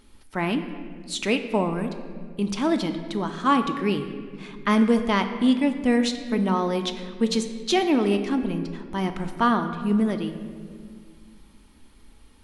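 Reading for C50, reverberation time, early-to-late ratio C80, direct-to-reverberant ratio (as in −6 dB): 9.5 dB, 1.9 s, 10.5 dB, 6.5 dB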